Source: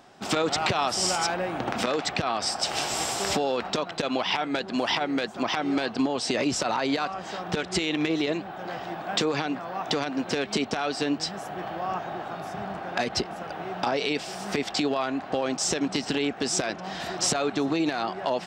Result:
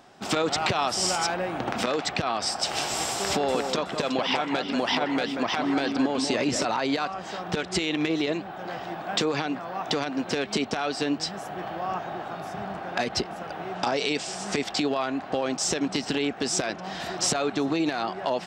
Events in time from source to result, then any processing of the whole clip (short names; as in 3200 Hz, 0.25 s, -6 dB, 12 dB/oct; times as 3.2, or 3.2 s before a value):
3.11–6.65 echo with dull and thin repeats by turns 0.186 s, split 2100 Hz, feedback 53%, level -5.5 dB
13.75–14.64 synth low-pass 7700 Hz, resonance Q 2.5